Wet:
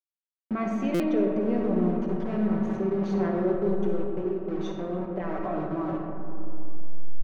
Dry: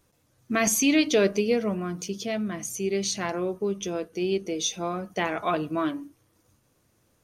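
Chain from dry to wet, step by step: send-on-delta sampling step -29 dBFS; low-pass 1 kHz 12 dB/octave; bass shelf 93 Hz -7.5 dB; comb 5.3 ms, depth 72%; gain riding 2 s; peak limiter -20.5 dBFS, peak gain reduction 10 dB; 3.85–5.89 s: compression, threshold -29 dBFS, peak gain reduction 5.5 dB; algorithmic reverb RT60 2.9 s, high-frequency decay 0.3×, pre-delay 15 ms, DRR 1 dB; buffer glitch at 0.94 s, samples 256, times 9

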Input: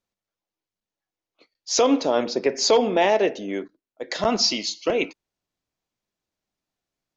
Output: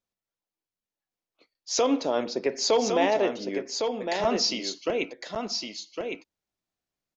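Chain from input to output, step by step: delay 1108 ms -5.5 dB; trim -5 dB

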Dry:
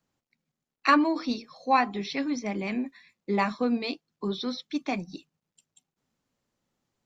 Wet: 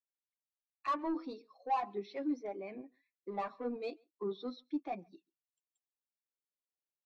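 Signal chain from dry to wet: high-pass 490 Hz 12 dB/octave; tilt shelf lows +6.5 dB; in parallel at -0.5 dB: level held to a coarse grid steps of 17 dB; on the sum: tempo 1×; saturation -25 dBFS, distortion -7 dB; flange 0.98 Hz, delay 5 ms, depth 2.3 ms, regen -40%; on a send: delay 138 ms -20.5 dB; on the sum: spectral contrast expander 1.5:1; trim +1 dB

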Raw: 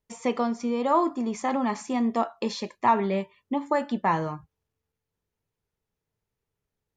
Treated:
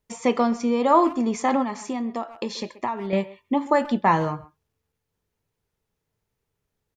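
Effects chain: speakerphone echo 130 ms, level -18 dB; 1.62–3.13 s: compression 5:1, threshold -31 dBFS, peak gain reduction 14 dB; trim +5 dB

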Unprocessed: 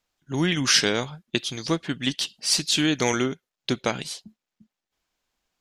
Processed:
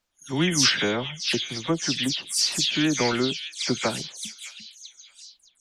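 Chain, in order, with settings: delay that grows with frequency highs early, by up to 155 ms; repeats whose band climbs or falls 622 ms, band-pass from 3.4 kHz, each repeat 0.7 oct, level -5 dB

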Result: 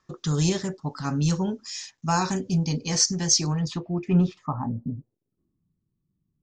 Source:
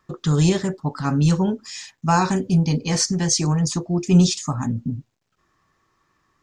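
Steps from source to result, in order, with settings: low-pass sweep 6.1 kHz -> 180 Hz, 3.30–5.70 s; trim -6 dB

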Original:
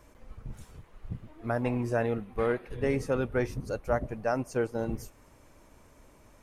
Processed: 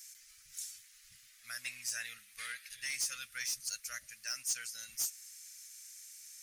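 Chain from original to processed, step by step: inverse Chebyshev high-pass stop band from 970 Hz, stop band 40 dB; resonant high shelf 4 kHz +11 dB, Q 1.5; saturation -33.5 dBFS, distortion -12 dB; trim +5.5 dB

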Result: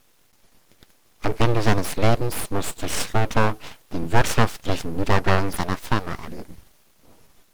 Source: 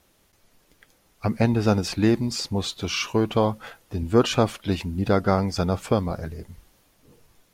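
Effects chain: 5.53–6.28 s: high-pass 320 Hz 12 dB/octave; full-wave rectifier; trim +4.5 dB

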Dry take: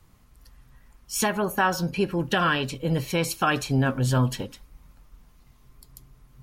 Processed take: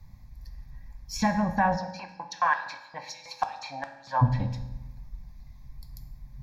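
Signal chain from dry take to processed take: low-pass that closes with the level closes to 2.2 kHz, closed at -20.5 dBFS; static phaser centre 2 kHz, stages 8; 1.76–4.21 s: LFO high-pass square 5.8 Hz -> 1.9 Hz 900–5500 Hz; bass shelf 180 Hz +11 dB; reverberation RT60 1.0 s, pre-delay 3 ms, DRR 6.5 dB

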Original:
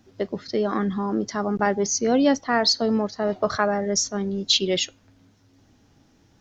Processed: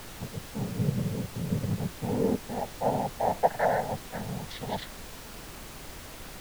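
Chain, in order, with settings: low-pass sweep 200 Hz -> 1.6 kHz, 1.70–4.73 s; noise-vocoded speech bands 6; static phaser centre 1.7 kHz, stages 8; added noise pink -38 dBFS; trim -5 dB

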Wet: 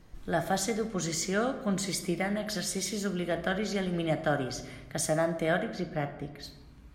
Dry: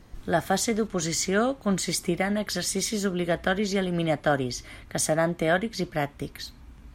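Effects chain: 5.63–6.42 s: low-pass 3 kHz -> 1.7 kHz 6 dB/octave; simulated room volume 610 m³, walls mixed, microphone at 0.57 m; trim -5.5 dB

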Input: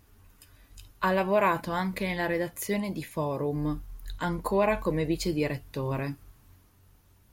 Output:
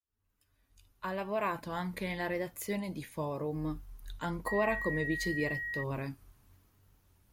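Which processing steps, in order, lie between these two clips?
fade-in on the opening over 2.04 s; vibrato 0.92 Hz 68 cents; 4.46–5.82 s: whistle 1.9 kHz -29 dBFS; trim -6 dB

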